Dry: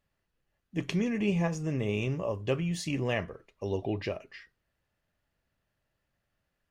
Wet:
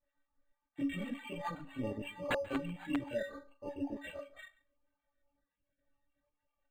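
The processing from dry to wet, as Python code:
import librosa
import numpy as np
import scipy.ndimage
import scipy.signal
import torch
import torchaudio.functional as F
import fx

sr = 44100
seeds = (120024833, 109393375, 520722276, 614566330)

y = fx.spec_dropout(x, sr, seeds[0], share_pct=45)
y = scipy.signal.sosfilt(scipy.signal.butter(2, 6200.0, 'lowpass', fs=sr, output='sos'), y)
y = fx.stiff_resonator(y, sr, f0_hz=280.0, decay_s=0.29, stiffness=0.008)
y = fx.chorus_voices(y, sr, voices=2, hz=1.3, base_ms=25, depth_ms=3.0, mix_pct=70)
y = (np.mod(10.0 ** (41.0 / 20.0) * y + 1.0, 2.0) - 1.0) / 10.0 ** (41.0 / 20.0)
y = y + 10.0 ** (-21.5 / 20.0) * np.pad(y, (int(138 * sr / 1000.0), 0))[:len(y)]
y = np.interp(np.arange(len(y)), np.arange(len(y))[::8], y[::8])
y = F.gain(torch.from_numpy(y), 16.0).numpy()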